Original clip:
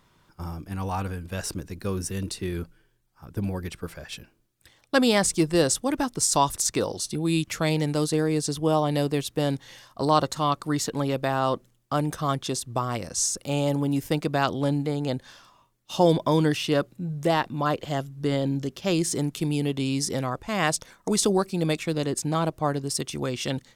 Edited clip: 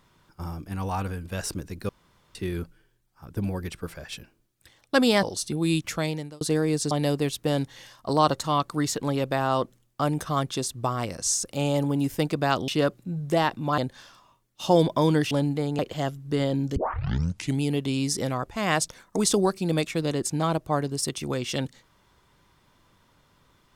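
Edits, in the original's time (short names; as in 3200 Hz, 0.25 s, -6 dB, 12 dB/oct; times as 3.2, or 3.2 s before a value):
1.89–2.35 room tone
5.23–6.86 cut
7.5–8.04 fade out
8.54–8.83 cut
14.6–15.08 swap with 16.61–17.71
18.68 tape start 0.87 s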